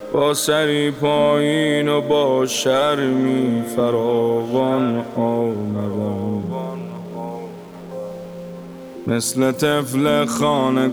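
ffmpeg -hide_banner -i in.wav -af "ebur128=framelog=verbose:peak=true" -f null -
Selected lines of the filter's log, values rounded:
Integrated loudness:
  I:         -18.7 LUFS
  Threshold: -29.5 LUFS
Loudness range:
  LRA:         9.7 LU
  Threshold: -40.2 LUFS
  LRA low:   -27.0 LUFS
  LRA high:  -17.3 LUFS
True peak:
  Peak:       -6.6 dBFS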